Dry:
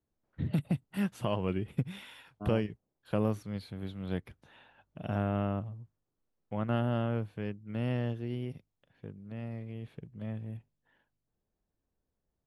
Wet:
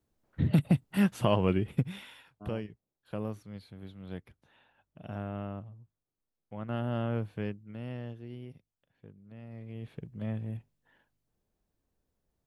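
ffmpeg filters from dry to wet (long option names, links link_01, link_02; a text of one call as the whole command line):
ffmpeg -i in.wav -af "volume=26dB,afade=type=out:start_time=1.41:duration=1.01:silence=0.237137,afade=type=in:start_time=6.59:duration=0.82:silence=0.354813,afade=type=out:start_time=7.41:duration=0.36:silence=0.316228,afade=type=in:start_time=9.47:duration=0.56:silence=0.281838" out.wav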